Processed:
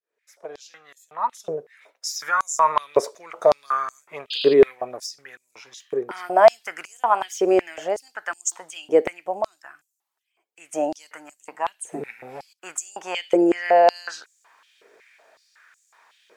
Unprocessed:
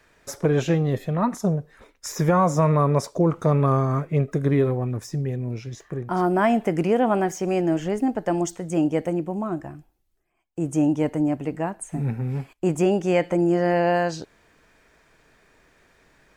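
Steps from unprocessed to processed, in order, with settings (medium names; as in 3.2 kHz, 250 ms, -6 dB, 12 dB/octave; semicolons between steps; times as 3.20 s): fade-in on the opening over 2.79 s; painted sound noise, 4.30–4.54 s, 2.4–5 kHz -36 dBFS; step-sequenced high-pass 5.4 Hz 430–7100 Hz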